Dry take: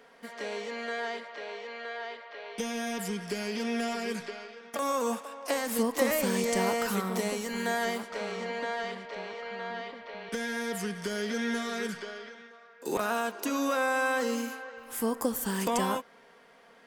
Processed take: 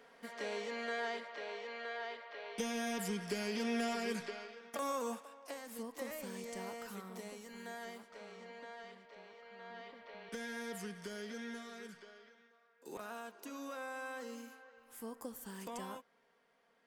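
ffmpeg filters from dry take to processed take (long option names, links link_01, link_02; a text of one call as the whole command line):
ffmpeg -i in.wav -af "volume=2.5dB,afade=type=out:start_time=4.39:duration=1.17:silence=0.237137,afade=type=in:start_time=9.49:duration=0.55:silence=0.446684,afade=type=out:start_time=10.69:duration=1.09:silence=0.473151" out.wav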